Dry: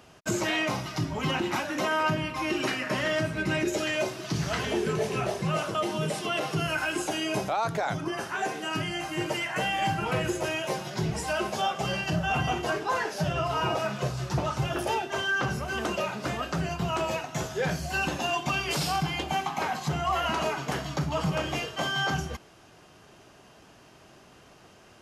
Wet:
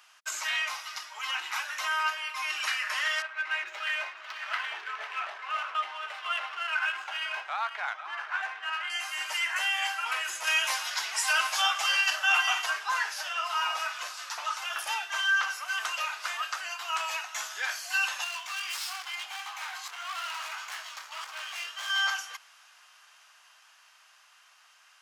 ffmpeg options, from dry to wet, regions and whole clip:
-filter_complex "[0:a]asettb=1/sr,asplit=3[s0][s1][s2];[s0]atrim=end=3.224[s3];[s1]atrim=start=3.22:end=8.9,asetpts=PTS-STARTPTS,afade=t=in:d=0.004:c=qsin,afade=t=out:st=5.676:d=0.004:c=qsin,adynamicsmooth=sensitivity=6:basefreq=1900,bass=f=250:g=-13,treble=f=4000:g=-12,aecho=1:1:497:0.251,atrim=end_sample=250488[s4];[s2]atrim=start=8.896[s5];[s3][s4]acrossfade=d=0.004:c1=hsin:c2=qsin[s6];[s6][s5]acrossfade=d=0.004:c1=qsin:c2=hsin,asettb=1/sr,asplit=3[s7][s8][s9];[s7]atrim=end=10.474[s10];[s8]atrim=start=10.47:end=12.66,asetpts=PTS-STARTPTS,afade=t=in:d=0.004:c=qsin,afade=t=out:st=2.186:d=0.004:c=qsin,highpass=f=390:p=1,acontrast=35[s11];[s9]atrim=start=12.656[s12];[s10][s11]acrossfade=d=0.004:c1=hsin:c2=qsin[s13];[s13][s12]acrossfade=d=0.004:c1=qsin:c2=hsin,asettb=1/sr,asplit=3[s14][s15][s16];[s14]atrim=end=18.244[s17];[s15]atrim=start=18.24:end=21.9,asetpts=PTS-STARTPTS,afade=t=in:d=0.004:c=qsin,afade=t=out:st=3.656:d=0.004:c=qsin,flanger=delay=16:depth=7.1:speed=1.6,asoftclip=type=hard:threshold=0.0211[s18];[s16]atrim=start=21.896[s19];[s17][s18]acrossfade=d=0.004:c1=hsin:c2=qsin[s20];[s20][s19]acrossfade=d=0.004:c1=qsin:c2=hsin,highpass=f=1100:w=0.5412,highpass=f=1100:w=1.3066,dynaudnorm=f=370:g=13:m=1.41"

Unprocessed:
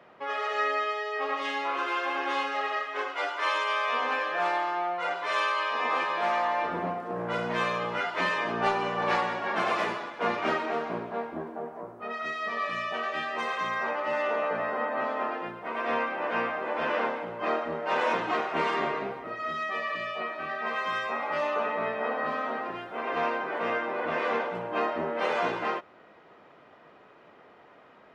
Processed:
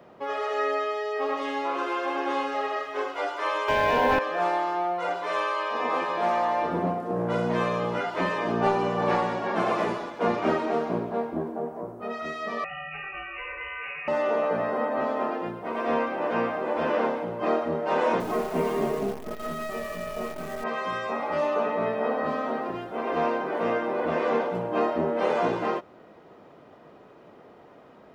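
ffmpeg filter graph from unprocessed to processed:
-filter_complex "[0:a]asettb=1/sr,asplit=3[s0][s1][s2];[s0]atrim=end=3.684[s3];[s1]atrim=start=3.68:end=4.19,asetpts=PTS-STARTPTS,afade=t=in:d=0.004:c=qsin,afade=t=out:st=0.506:d=0.004:c=qsin,aeval=exprs='0.141*sin(PI/2*1.78*val(0)/0.141)':c=same,acrusher=bits=7:mode=log:mix=0:aa=0.000001,asuperstop=centerf=1200:order=20:qfactor=6.3[s4];[s2]atrim=start=4.186[s5];[s3][s4]acrossfade=d=0.004:c1=hsin:c2=qsin[s6];[s6][s5]acrossfade=d=0.004:c1=qsin:c2=hsin,asettb=1/sr,asplit=3[s7][s8][s9];[s7]atrim=end=12.644[s10];[s8]atrim=start=12.64:end=14.08,asetpts=PTS-STARTPTS,afade=t=in:d=0.004:c=qsin,afade=t=out:st=1.436:d=0.004:c=qsin,equalizer=f=1800:t=o:w=2.6:g=-4,lowpass=f=2600:t=q:w=0.5098,lowpass=f=2600:t=q:w=0.6013,lowpass=f=2600:t=q:w=0.9,lowpass=f=2600:t=q:w=2.563,afreqshift=-3100[s11];[s9]atrim=start=14.076[s12];[s10][s11]acrossfade=d=0.004:c1=hsin:c2=qsin[s13];[s13][s12]acrossfade=d=0.004:c1=qsin:c2=hsin,asettb=1/sr,asplit=3[s14][s15][s16];[s14]atrim=end=18.204[s17];[s15]atrim=start=18.2:end=20.64,asetpts=PTS-STARTPTS,afade=t=in:d=0.004:c=qsin,afade=t=out:st=2.436:d=0.004:c=qsin,equalizer=f=2200:w=0.33:g=-6,acrusher=bits=7:dc=4:mix=0:aa=0.000001,aecho=1:1:4.7:0.47,atrim=end_sample=107604[s18];[s16]atrim=start=20.636[s19];[s17][s18]acrossfade=d=0.004:c1=hsin:c2=qsin[s20];[s20][s19]acrossfade=d=0.004:c1=qsin:c2=hsin,equalizer=f=2000:t=o:w=2.7:g=-11.5,acrossover=split=2900[s21][s22];[s22]acompressor=threshold=0.00178:ratio=4:attack=1:release=60[s23];[s21][s23]amix=inputs=2:normalize=0,volume=2.66"

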